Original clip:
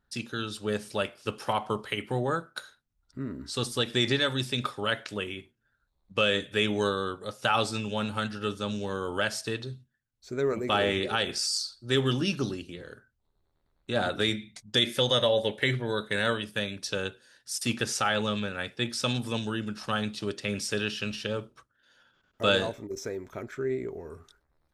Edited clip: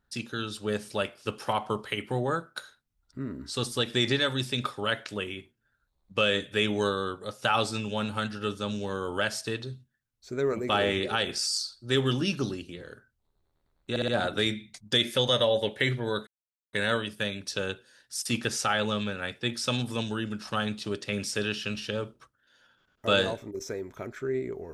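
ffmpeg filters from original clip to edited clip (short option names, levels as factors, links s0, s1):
-filter_complex "[0:a]asplit=5[s0][s1][s2][s3][s4];[s0]atrim=end=13.962[s5];[s1]atrim=start=13.898:end=13.962[s6];[s2]atrim=start=13.898:end=13.962[s7];[s3]atrim=start=13.898:end=16.09,asetpts=PTS-STARTPTS,afade=t=out:st=2.188:d=0.004:c=hsin,apad=pad_dur=0.46[s8];[s4]atrim=start=16.09,asetpts=PTS-STARTPTS,afade=t=in:d=0.004:c=hsin[s9];[s5][s6]acrossfade=d=0.004:c1=hsin:c2=hsin[s10];[s10][s7]acrossfade=d=0.004:c1=hsin:c2=hsin[s11];[s8][s9]concat=n=2:v=0:a=1[s12];[s11][s12]acrossfade=d=0.004:c1=hsin:c2=hsin"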